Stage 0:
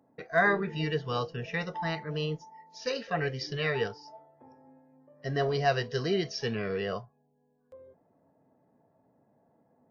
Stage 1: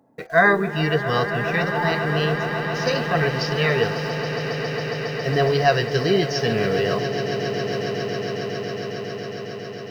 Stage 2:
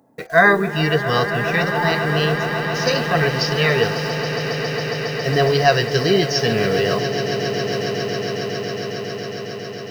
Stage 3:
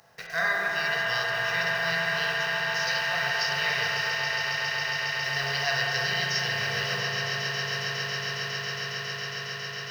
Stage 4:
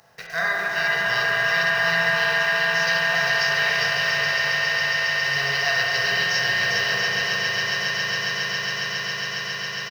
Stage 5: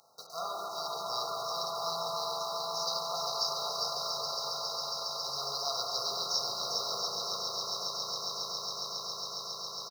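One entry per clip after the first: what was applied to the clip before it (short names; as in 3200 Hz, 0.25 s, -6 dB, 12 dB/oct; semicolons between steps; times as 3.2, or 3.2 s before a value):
in parallel at -11 dB: requantised 8-bit, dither none; on the sum: swelling echo 0.137 s, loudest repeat 8, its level -13.5 dB; gain +6.5 dB
high shelf 4900 Hz +7.5 dB; gain +2.5 dB
per-bin compression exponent 0.6; passive tone stack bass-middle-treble 10-0-10; spring tank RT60 3.5 s, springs 36/42/48 ms, chirp 60 ms, DRR -2 dB; gain -9 dB
bouncing-ball echo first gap 0.4 s, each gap 0.7×, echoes 5; gain +2.5 dB
FFT band-reject 1400–3800 Hz; HPF 610 Hz 6 dB/oct; harmonic-percussive split harmonic -5 dB; gain -2 dB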